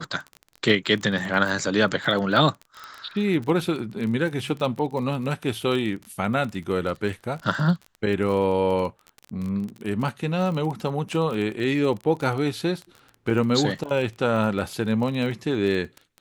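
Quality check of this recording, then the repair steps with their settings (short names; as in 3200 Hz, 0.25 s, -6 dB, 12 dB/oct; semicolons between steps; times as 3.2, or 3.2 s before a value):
crackle 24/s -29 dBFS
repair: de-click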